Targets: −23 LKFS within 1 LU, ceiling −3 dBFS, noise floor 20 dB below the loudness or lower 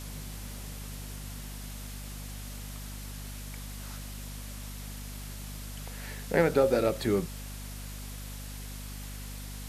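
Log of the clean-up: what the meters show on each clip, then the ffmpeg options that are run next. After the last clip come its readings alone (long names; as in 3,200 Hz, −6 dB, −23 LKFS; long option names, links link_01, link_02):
mains hum 50 Hz; hum harmonics up to 250 Hz; level of the hum −39 dBFS; background noise floor −41 dBFS; target noise floor −55 dBFS; integrated loudness −35.0 LKFS; sample peak −10.0 dBFS; target loudness −23.0 LKFS
→ -af "bandreject=frequency=50:width_type=h:width=6,bandreject=frequency=100:width_type=h:width=6,bandreject=frequency=150:width_type=h:width=6,bandreject=frequency=200:width_type=h:width=6,bandreject=frequency=250:width_type=h:width=6"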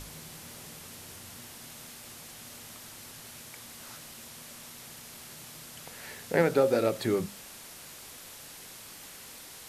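mains hum none found; background noise floor −48 dBFS; target noise floor −56 dBFS
→ -af "afftdn=noise_reduction=8:noise_floor=-48"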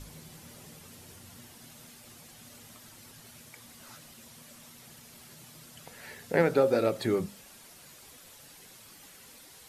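background noise floor −53 dBFS; integrated loudness −27.5 LKFS; sample peak −10.5 dBFS; target loudness −23.0 LKFS
→ -af "volume=4.5dB"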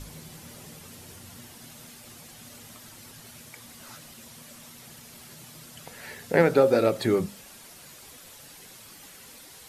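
integrated loudness −23.0 LKFS; sample peak −6.0 dBFS; background noise floor −49 dBFS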